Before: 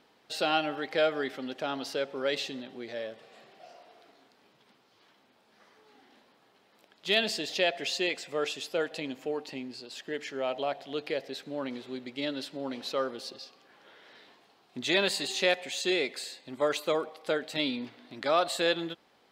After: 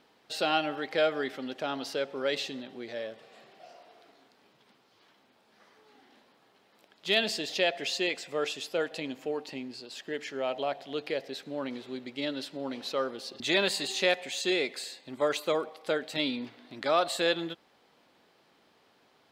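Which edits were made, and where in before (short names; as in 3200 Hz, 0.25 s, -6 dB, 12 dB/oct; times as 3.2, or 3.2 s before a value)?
13.4–14.8 cut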